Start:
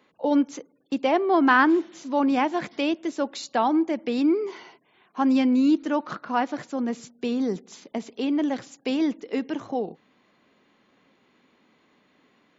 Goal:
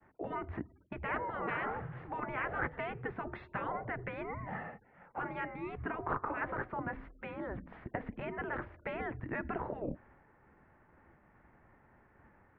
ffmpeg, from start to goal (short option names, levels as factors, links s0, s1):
-af "agate=range=0.0224:threshold=0.00112:ratio=3:detection=peak,afftfilt=real='re*lt(hypot(re,im),0.112)':imag='im*lt(hypot(re,im),0.112)':win_size=1024:overlap=0.75,highpass=f=260:t=q:w=0.5412,highpass=f=260:t=q:w=1.307,lowpass=f=2100:t=q:w=0.5176,lowpass=f=2100:t=q:w=0.7071,lowpass=f=2100:t=q:w=1.932,afreqshift=-200,volume=1.58"